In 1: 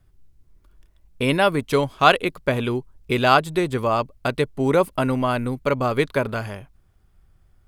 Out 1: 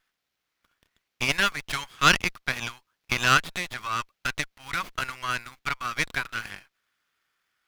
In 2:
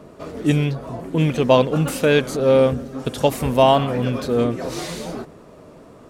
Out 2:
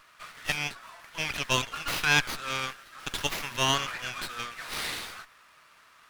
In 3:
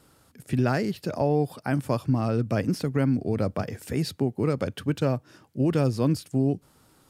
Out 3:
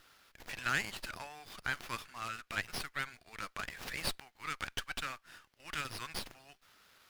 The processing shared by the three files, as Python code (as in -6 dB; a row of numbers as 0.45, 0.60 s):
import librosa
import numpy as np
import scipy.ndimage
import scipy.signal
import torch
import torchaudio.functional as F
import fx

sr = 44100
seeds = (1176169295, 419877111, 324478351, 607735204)

y = scipy.signal.sosfilt(scipy.signal.butter(4, 1400.0, 'highpass', fs=sr, output='sos'), x)
y = fx.running_max(y, sr, window=5)
y = y * librosa.db_to_amplitude(3.0)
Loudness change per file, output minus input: -5.0, -10.0, -13.0 LU